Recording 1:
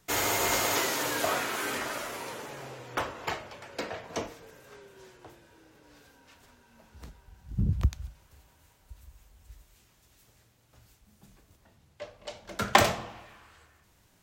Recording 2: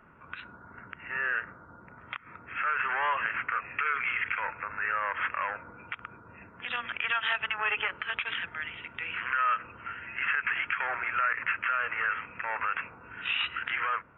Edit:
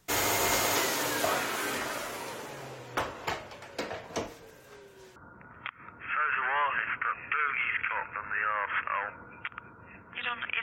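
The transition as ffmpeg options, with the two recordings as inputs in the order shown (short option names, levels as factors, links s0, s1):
-filter_complex "[0:a]apad=whole_dur=10.62,atrim=end=10.62,atrim=end=5.162[s0];[1:a]atrim=start=1.628:end=7.09[s1];[s0][s1]acrossfade=d=0.004:c1=hsin:c2=hsin"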